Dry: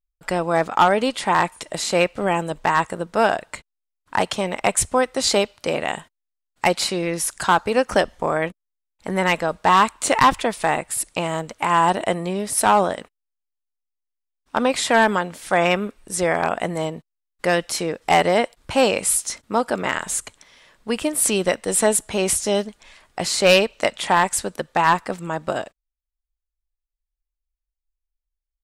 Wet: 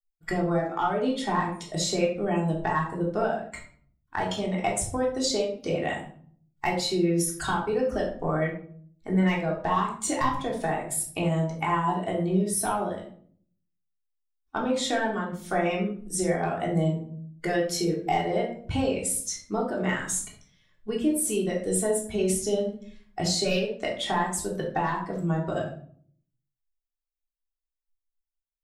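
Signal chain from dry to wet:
spectral dynamics exaggerated over time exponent 1.5
low-shelf EQ 420 Hz +4.5 dB
downward compressor 10 to 1, threshold −28 dBFS, peak gain reduction 18 dB
rectangular room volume 620 cubic metres, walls furnished, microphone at 3.4 metres

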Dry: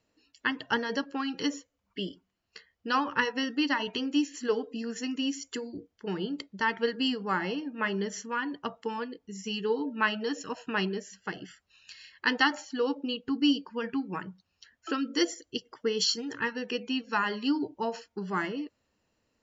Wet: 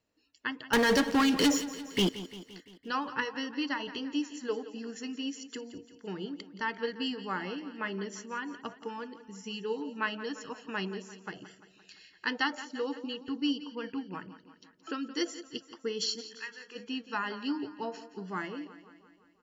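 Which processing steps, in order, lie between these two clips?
0:00.73–0:02.09: leveller curve on the samples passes 5
0:16.20–0:16.75: resonant band-pass 4,500 Hz → 1,200 Hz, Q 1.8
repeating echo 172 ms, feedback 59%, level −14.5 dB
level −5.5 dB

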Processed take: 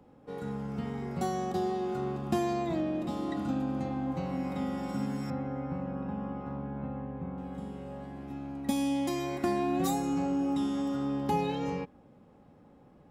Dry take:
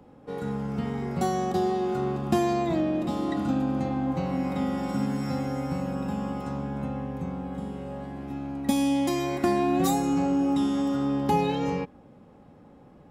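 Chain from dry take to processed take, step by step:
0:05.30–0:07.38: low-pass filter 1,900 Hz 12 dB per octave
level −5.5 dB

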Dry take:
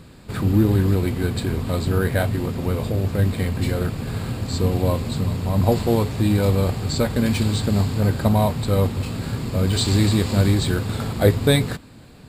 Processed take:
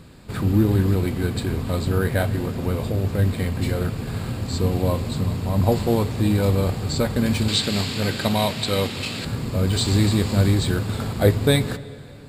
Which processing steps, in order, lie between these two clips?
0:07.48–0:09.25: meter weighting curve D
on a send: convolution reverb RT60 3.2 s, pre-delay 28 ms, DRR 16.5 dB
on the sum: level −1 dB

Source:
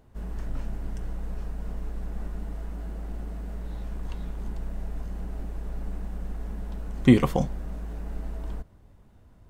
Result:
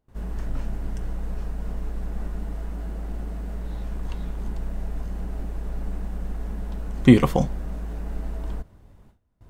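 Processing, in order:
noise gate with hold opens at −46 dBFS
level +3.5 dB

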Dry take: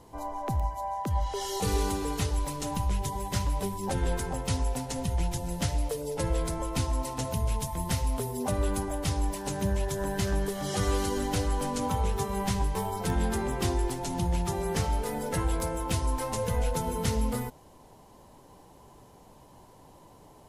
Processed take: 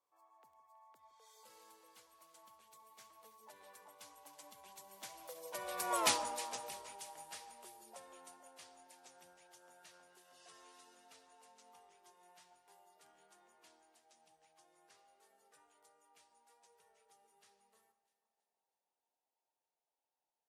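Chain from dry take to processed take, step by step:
source passing by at 0:06.03, 36 m/s, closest 3.5 metres
high-pass filter 700 Hz 12 dB per octave
on a send: delay that swaps between a low-pass and a high-pass 162 ms, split 1,500 Hz, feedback 69%, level −13 dB
on the sum: level +6.5 dB

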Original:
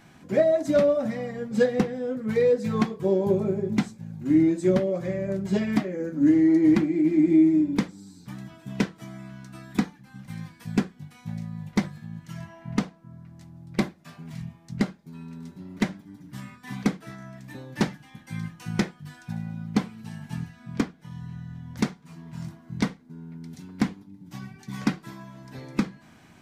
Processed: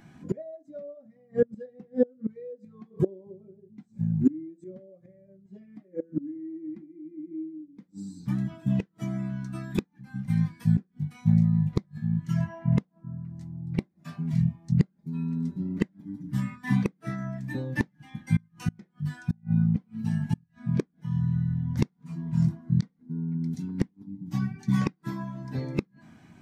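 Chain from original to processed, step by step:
gate with flip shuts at −23 dBFS, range −28 dB
high-shelf EQ 5,200 Hz +5 dB
every bin expanded away from the loudest bin 1.5 to 1
level +7 dB

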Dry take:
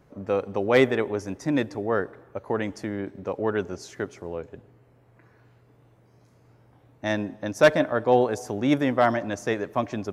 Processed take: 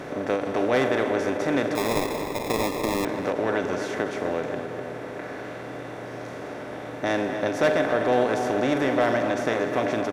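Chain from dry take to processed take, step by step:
compressor on every frequency bin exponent 0.4
double-tracking delay 44 ms −12.5 dB
in parallel at −10.5 dB: hard clipping −14.5 dBFS, distortion −10 dB
0:01.75–0:03.05: on the sum: sample-rate reduction 1,500 Hz, jitter 0%
on a send: tape delay 252 ms, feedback 62%, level −7 dB, low-pass 2,400 Hz
on the sum: every ending faded ahead of time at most 110 dB per second
level −8.5 dB

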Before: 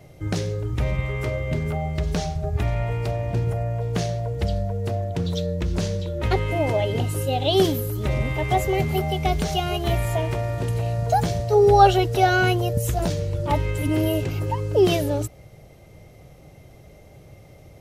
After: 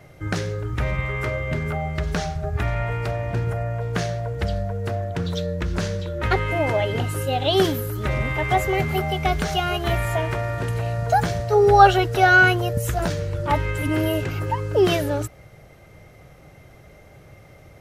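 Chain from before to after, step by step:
parametric band 1,500 Hz +10.5 dB 1.1 octaves
level −1 dB

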